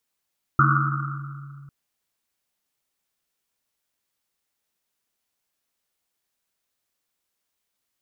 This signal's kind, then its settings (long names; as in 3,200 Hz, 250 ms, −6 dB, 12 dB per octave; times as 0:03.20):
drum after Risset, pitch 140 Hz, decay 2.93 s, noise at 1,300 Hz, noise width 290 Hz, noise 50%